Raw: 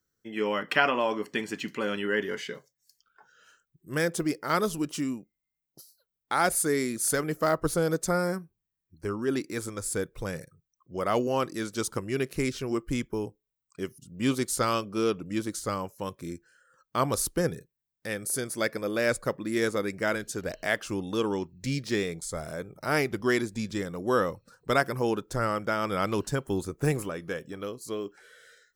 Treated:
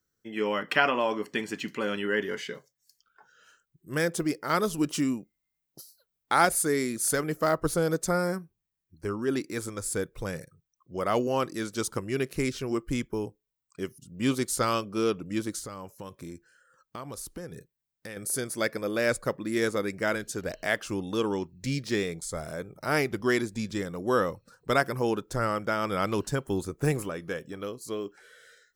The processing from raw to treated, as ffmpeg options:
ffmpeg -i in.wav -filter_complex "[0:a]asettb=1/sr,asplit=3[link_01][link_02][link_03];[link_01]atrim=end=15.604[link_04];[link_02]atrim=start=15.6:end=18.17,asetpts=PTS-STARTPTS,afade=type=in:duration=0.004:curve=qsin,afade=type=out:start_time=2.566:duration=0.004:curve=qsin,acompressor=threshold=-36dB:ratio=6:attack=3.2:release=140:knee=1:detection=peak[link_05];[link_03]atrim=start=18.166[link_06];[link_04][link_05]acrossfade=duration=0.004:curve1=hsin:curve2=qsin[link_07];[link_07][link_06]acrossfade=duration=0.004:curve1=qsin:curve2=hsin,asplit=3[link_08][link_09][link_10];[link_08]atrim=end=4.782[link_11];[link_09]atrim=start=4.778:end=6.452,asetpts=PTS-STARTPTS,volume=3.5dB[link_12];[link_10]atrim=start=6.448[link_13];[link_11][link_12]acrossfade=duration=0.004:curve1=hsin:curve2=hsin[link_14];[link_14][link_13]acrossfade=duration=0.004:curve1=hsin:curve2=hsin" out.wav

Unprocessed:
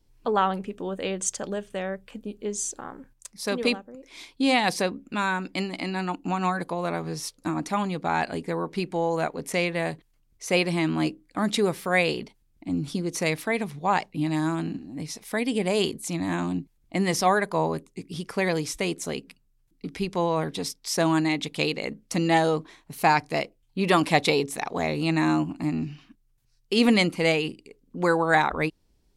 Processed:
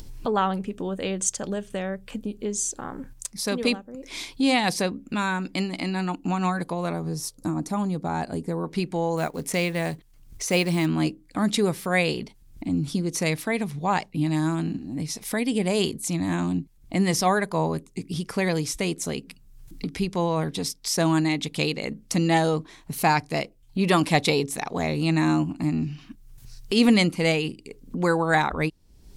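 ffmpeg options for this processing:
ffmpeg -i in.wav -filter_complex "[0:a]asettb=1/sr,asplit=3[link_01][link_02][link_03];[link_01]atrim=end=6.934[link_04];[link_02]atrim=start=6.93:end=8.64,asetpts=PTS-STARTPTS,afade=type=in:duration=0.004:curve=qsin,afade=type=out:start_time=1.706:duration=0.004:curve=qsin,equalizer=frequency=2500:width_type=o:width=1.9:gain=-11[link_05];[link_03]atrim=start=8.636[link_06];[link_04][link_05]acrossfade=duration=0.004:curve1=hsin:curve2=qsin[link_07];[link_07][link_06]acrossfade=duration=0.004:curve1=qsin:curve2=hsin,asettb=1/sr,asplit=3[link_08][link_09][link_10];[link_08]atrim=end=9.174[link_11];[link_09]atrim=start=9.17:end=10.86,asetpts=PTS-STARTPTS,afade=type=in:duration=0.004:curve=qsin,afade=type=out:start_time=1.686:duration=0.004:curve=qsin,acrusher=bits=6:mode=log:mix=0:aa=0.000001[link_12];[link_10]atrim=start=10.856[link_13];[link_11][link_12]acrossfade=duration=0.004:curve1=hsin:curve2=qsin[link_14];[link_14][link_13]acrossfade=duration=0.004:curve1=qsin:curve2=hsin,bass=frequency=250:gain=6,treble=frequency=4000:gain=4,acompressor=mode=upward:threshold=-24dB:ratio=2.5,volume=-1dB" out.wav

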